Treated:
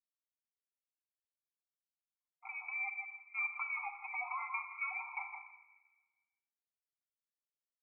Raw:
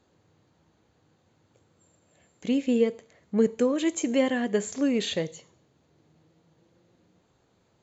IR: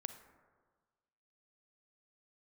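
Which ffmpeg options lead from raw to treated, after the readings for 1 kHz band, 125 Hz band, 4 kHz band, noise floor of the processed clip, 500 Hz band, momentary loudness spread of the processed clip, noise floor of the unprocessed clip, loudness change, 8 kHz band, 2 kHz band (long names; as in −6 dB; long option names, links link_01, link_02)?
−2.0 dB, below −40 dB, below −40 dB, below −85 dBFS, below −40 dB, 9 LU, −68 dBFS, −13.0 dB, can't be measured, +0.5 dB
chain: -filter_complex "[0:a]highpass=frequency=690:width=0.5412,highpass=frequency=690:width=1.3066,afwtdn=0.00447,aecho=1:1:6.9:0.66,aecho=1:1:159|318:0.168|0.0302,agate=range=-33dB:threshold=-56dB:ratio=3:detection=peak,alimiter=level_in=2.5dB:limit=-24dB:level=0:latency=1:release=25,volume=-2.5dB,acompressor=threshold=-45dB:ratio=6[link_01];[1:a]atrim=start_sample=2205[link_02];[link_01][link_02]afir=irnorm=-1:irlink=0,lowpass=frequency=2400:width_type=q:width=0.5098,lowpass=frequency=2400:width_type=q:width=0.6013,lowpass=frequency=2400:width_type=q:width=0.9,lowpass=frequency=2400:width_type=q:width=2.563,afreqshift=-2800,dynaudnorm=framelen=300:gausssize=13:maxgain=11.5dB,afftfilt=real='re*eq(mod(floor(b*sr/1024/690),2),1)':imag='im*eq(mod(floor(b*sr/1024/690),2),1)':win_size=1024:overlap=0.75,volume=1dB"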